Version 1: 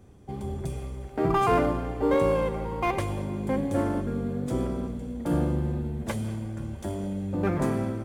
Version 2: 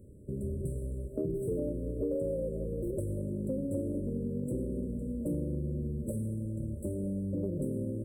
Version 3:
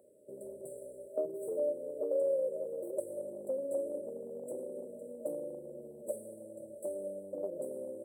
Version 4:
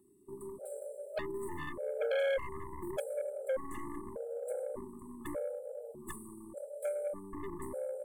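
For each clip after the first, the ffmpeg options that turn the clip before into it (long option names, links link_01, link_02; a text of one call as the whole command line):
ffmpeg -i in.wav -af "afftfilt=real='re*(1-between(b*sr/4096,630,7600))':imag='im*(1-between(b*sr/4096,630,7600))':win_size=4096:overlap=0.75,acompressor=threshold=-31dB:ratio=4" out.wav
ffmpeg -i in.wav -af "highpass=frequency=680:width_type=q:width=4.5" out.wav
ffmpeg -i in.wav -af "aeval=exprs='0.0841*(cos(1*acos(clip(val(0)/0.0841,-1,1)))-cos(1*PI/2))+0.0266*(cos(5*acos(clip(val(0)/0.0841,-1,1)))-cos(5*PI/2))+0.0237*(cos(6*acos(clip(val(0)/0.0841,-1,1)))-cos(6*PI/2))+0.0299*(cos(8*acos(clip(val(0)/0.0841,-1,1)))-cos(8*PI/2))':channel_layout=same,afftfilt=real='re*gt(sin(2*PI*0.84*pts/sr)*(1-2*mod(floor(b*sr/1024/430),2)),0)':imag='im*gt(sin(2*PI*0.84*pts/sr)*(1-2*mod(floor(b*sr/1024/430),2)),0)':win_size=1024:overlap=0.75,volume=-3.5dB" out.wav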